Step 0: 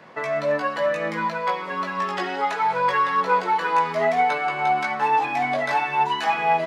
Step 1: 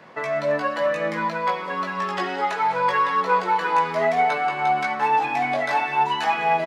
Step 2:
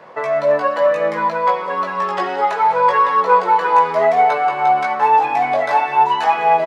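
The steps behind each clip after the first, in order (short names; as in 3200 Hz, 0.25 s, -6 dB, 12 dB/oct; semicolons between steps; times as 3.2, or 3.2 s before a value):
outdoor echo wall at 35 m, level -13 dB
graphic EQ 250/500/1000 Hz -3/+8/+6 dB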